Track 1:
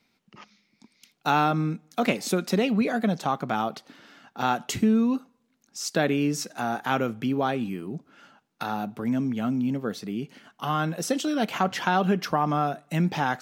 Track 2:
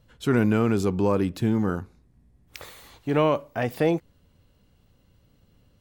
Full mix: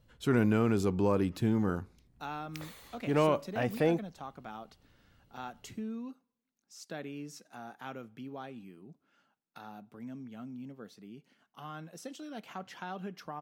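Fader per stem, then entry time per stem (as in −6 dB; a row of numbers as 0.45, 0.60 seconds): −18.0, −5.5 decibels; 0.95, 0.00 seconds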